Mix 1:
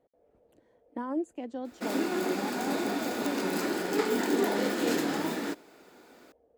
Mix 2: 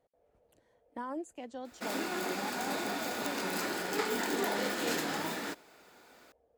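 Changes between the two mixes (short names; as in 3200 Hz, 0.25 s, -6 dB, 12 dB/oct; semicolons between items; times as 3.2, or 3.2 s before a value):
speech: add tone controls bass 0 dB, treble +5 dB; master: add bell 300 Hz -9 dB 1.6 oct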